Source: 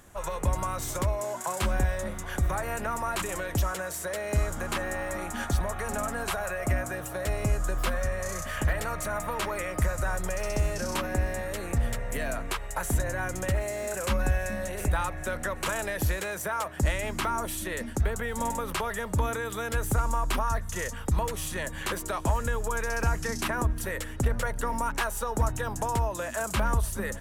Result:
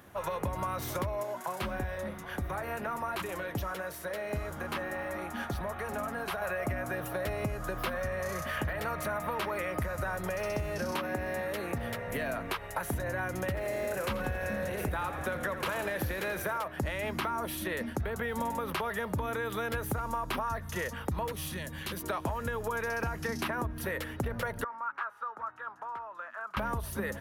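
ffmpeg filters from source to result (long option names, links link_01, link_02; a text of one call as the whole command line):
ffmpeg -i in.wav -filter_complex "[0:a]asettb=1/sr,asplit=3[link_01][link_02][link_03];[link_01]atrim=end=1.234[link_04];[link_02]atrim=start=1.23:end=6.42,asetpts=PTS-STARTPTS,afade=type=in:duration=0.004:curve=qsin,afade=type=out:start_time=5.186:duration=0.004:curve=qsin,flanger=delay=1.8:depth=4.6:regen=-70:speed=1.5:shape=triangular[link_05];[link_03]atrim=start=6.416[link_06];[link_04][link_05]acrossfade=duration=0.004:curve1=hsin:curve2=qsin[link_07];[link_07][link_06]acrossfade=duration=0.004:curve1=qsin:curve2=hsin,asettb=1/sr,asplit=3[link_08][link_09][link_10];[link_08]atrim=end=10.914[link_11];[link_09]atrim=start=10.91:end=12.08,asetpts=PTS-STARTPTS,afade=type=in:duration=0.004:curve=qsin,afade=type=out:start_time=1.166:duration=0.004:curve=qsin,highpass=frequency=140:poles=1[link_12];[link_10]atrim=start=12.076[link_13];[link_11][link_12]acrossfade=duration=0.004:curve1=hsin:curve2=qsin[link_14];[link_14][link_13]acrossfade=duration=0.004:curve1=qsin:curve2=hsin,asettb=1/sr,asplit=3[link_15][link_16][link_17];[link_15]atrim=end=13.464[link_18];[link_16]atrim=start=13.46:end=16.58,asetpts=PTS-STARTPTS,afade=type=in:duration=0.004:curve=qsin,afade=type=out:start_time=3.116:duration=0.004:curve=qsin,asplit=8[link_19][link_20][link_21][link_22][link_23][link_24][link_25][link_26];[link_20]adelay=84,afreqshift=-40,volume=-11dB[link_27];[link_21]adelay=168,afreqshift=-80,volume=-15.3dB[link_28];[link_22]adelay=252,afreqshift=-120,volume=-19.6dB[link_29];[link_23]adelay=336,afreqshift=-160,volume=-23.9dB[link_30];[link_24]adelay=420,afreqshift=-200,volume=-28.2dB[link_31];[link_25]adelay=504,afreqshift=-240,volume=-32.5dB[link_32];[link_26]adelay=588,afreqshift=-280,volume=-36.8dB[link_33];[link_19][link_27][link_28][link_29][link_30][link_31][link_32][link_33]amix=inputs=8:normalize=0,atrim=end_sample=137592[link_34];[link_17]atrim=start=16.576[link_35];[link_18][link_34]acrossfade=duration=0.004:curve1=hsin:curve2=qsin[link_36];[link_36][link_35]acrossfade=duration=0.004:curve1=qsin:curve2=hsin,asettb=1/sr,asplit=3[link_37][link_38][link_39];[link_37]atrim=end=21.324[link_40];[link_38]atrim=start=21.32:end=22.04,asetpts=PTS-STARTPTS,afade=type=in:duration=0.004:curve=qsin,afade=type=out:start_time=0.716:duration=0.004:curve=qsin,acrossover=split=250|3000[link_41][link_42][link_43];[link_42]acompressor=threshold=-48dB:ratio=2.5:attack=3.2:release=140:knee=2.83:detection=peak[link_44];[link_41][link_44][link_43]amix=inputs=3:normalize=0[link_45];[link_39]atrim=start=22.036[link_46];[link_40][link_45]acrossfade=duration=0.004:curve1=hsin:curve2=qsin[link_47];[link_47][link_46]acrossfade=duration=0.004:curve1=qsin:curve2=hsin,asettb=1/sr,asplit=3[link_48][link_49][link_50];[link_48]atrim=end=24.644[link_51];[link_49]atrim=start=24.64:end=26.57,asetpts=PTS-STARTPTS,afade=type=in:duration=0.004:curve=qsin,afade=type=out:start_time=1.926:duration=0.004:curve=qsin,bandpass=frequency=1300:width_type=q:width=4.5[link_52];[link_50]atrim=start=26.566[link_53];[link_51][link_52]acrossfade=duration=0.004:curve1=hsin:curve2=qsin[link_54];[link_54][link_53]acrossfade=duration=0.004:curve1=qsin:curve2=hsin,highpass=89,equalizer=frequency=7600:width_type=o:width=0.71:gain=-15,acompressor=threshold=-31dB:ratio=6,volume=1.5dB" out.wav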